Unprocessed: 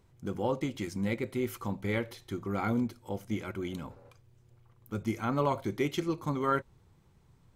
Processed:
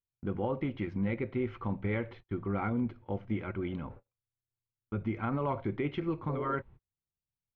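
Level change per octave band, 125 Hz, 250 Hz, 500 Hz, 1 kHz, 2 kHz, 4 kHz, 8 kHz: +0.5 dB, -1.0 dB, -2.0 dB, -3.0 dB, -2.5 dB, -9.0 dB, under -30 dB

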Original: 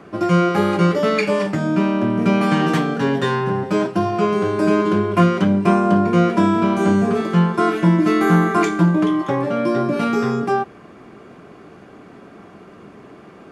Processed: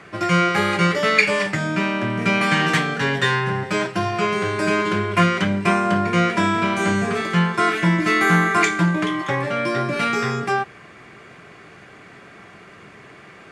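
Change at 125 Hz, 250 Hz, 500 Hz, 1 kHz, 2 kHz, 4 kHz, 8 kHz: -3.0 dB, -5.5 dB, -4.5 dB, 0.0 dB, +7.0 dB, +5.5 dB, n/a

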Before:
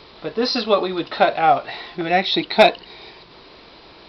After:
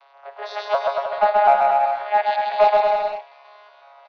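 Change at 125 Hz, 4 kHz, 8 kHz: under -20 dB, -13.5 dB, n/a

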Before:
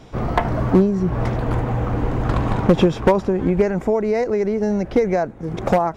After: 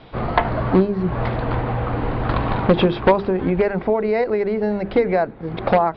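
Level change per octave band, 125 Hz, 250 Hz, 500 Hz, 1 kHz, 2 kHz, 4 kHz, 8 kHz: -2.0 dB, -2.0 dB, 0.0 dB, +2.0 dB, +3.0 dB, +3.0 dB, n/a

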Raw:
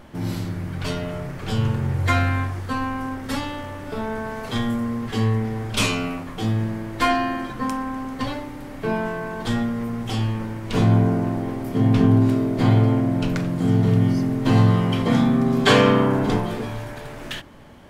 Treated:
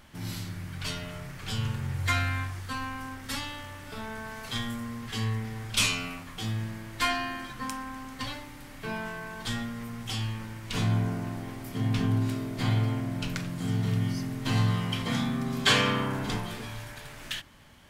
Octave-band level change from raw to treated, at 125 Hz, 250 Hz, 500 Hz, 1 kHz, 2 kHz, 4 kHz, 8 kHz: -9.0, -12.0, -14.0, -9.0, -4.0, -1.5, 0.0 dB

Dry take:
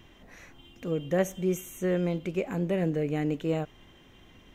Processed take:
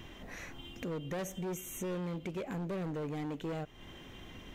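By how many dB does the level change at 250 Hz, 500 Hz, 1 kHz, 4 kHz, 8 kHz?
-9.0, -10.5, -4.5, -2.5, -2.5 dB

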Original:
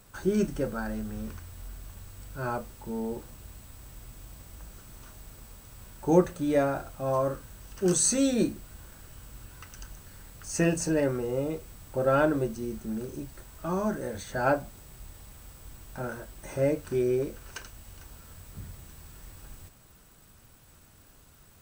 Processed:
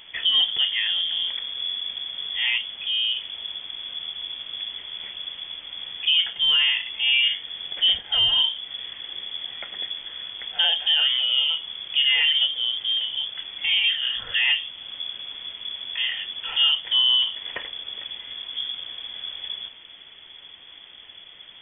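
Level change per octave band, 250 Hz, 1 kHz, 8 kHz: under -25 dB, -7.5 dB, under -40 dB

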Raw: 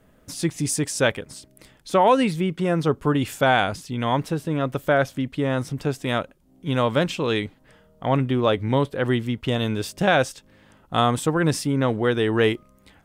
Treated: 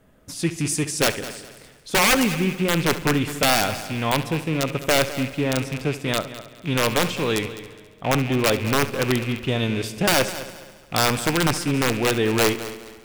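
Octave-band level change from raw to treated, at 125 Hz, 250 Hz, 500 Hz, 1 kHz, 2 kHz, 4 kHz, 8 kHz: -0.5, 0.0, -1.5, -1.5, +3.0, +5.5, +6.5 dB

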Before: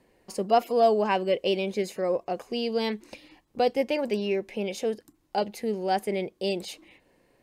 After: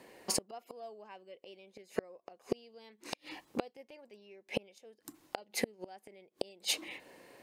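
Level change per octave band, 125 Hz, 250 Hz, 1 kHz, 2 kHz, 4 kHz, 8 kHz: n/a, -14.0 dB, -20.0 dB, -9.0 dB, -5.5 dB, +5.0 dB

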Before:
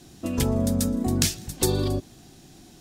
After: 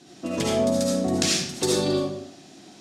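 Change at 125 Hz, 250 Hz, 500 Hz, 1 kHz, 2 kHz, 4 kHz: -5.5, +0.5, +6.0, +4.5, +5.0, +4.5 dB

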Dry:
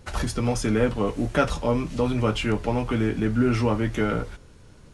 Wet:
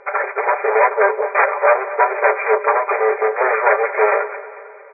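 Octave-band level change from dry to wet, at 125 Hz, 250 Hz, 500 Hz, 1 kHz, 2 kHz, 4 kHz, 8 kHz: under -40 dB, under -15 dB, +10.0 dB, +15.0 dB, +14.5 dB, under -40 dB, under -40 dB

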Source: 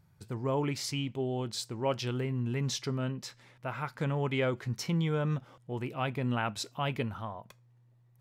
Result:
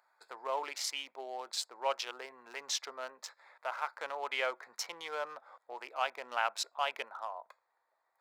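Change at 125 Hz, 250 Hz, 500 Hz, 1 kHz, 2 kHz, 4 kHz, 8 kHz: under -40 dB, -26.0 dB, -6.0 dB, +1.5 dB, +1.0 dB, +0.5 dB, +1.0 dB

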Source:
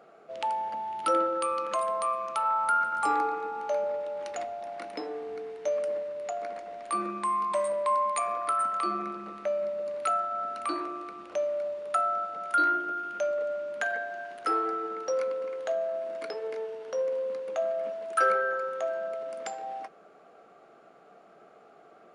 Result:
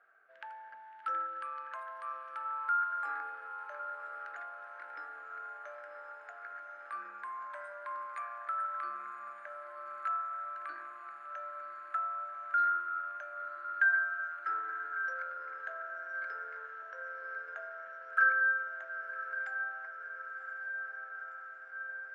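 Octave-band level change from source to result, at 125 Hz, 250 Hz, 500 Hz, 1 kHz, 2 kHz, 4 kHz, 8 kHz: n/a, under -25 dB, -22.5 dB, -8.0 dB, +3.5 dB, under -15 dB, under -25 dB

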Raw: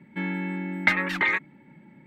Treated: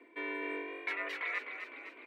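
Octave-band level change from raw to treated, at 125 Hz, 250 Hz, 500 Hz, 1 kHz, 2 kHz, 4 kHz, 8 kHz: under -40 dB, -16.0 dB, -4.0 dB, -10.5 dB, -12.0 dB, -11.5 dB, n/a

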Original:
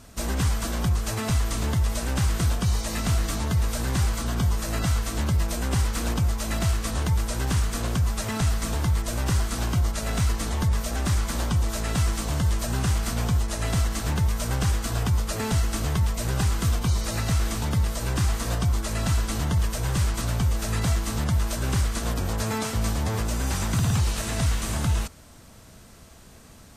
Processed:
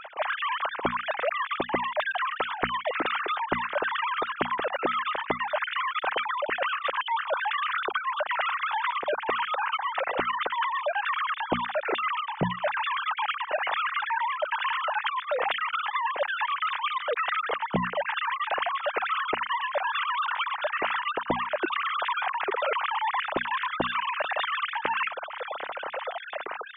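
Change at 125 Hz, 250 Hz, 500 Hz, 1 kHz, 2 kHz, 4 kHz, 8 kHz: -22.5 dB, -9.0 dB, +4.0 dB, +9.0 dB, +7.5 dB, 0.0 dB, under -40 dB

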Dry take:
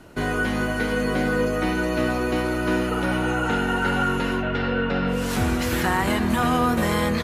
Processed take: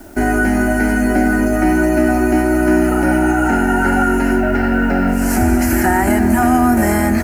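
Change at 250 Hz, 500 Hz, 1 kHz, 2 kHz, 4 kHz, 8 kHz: +10.5, +7.0, +7.5, +6.5, -3.5, +9.5 dB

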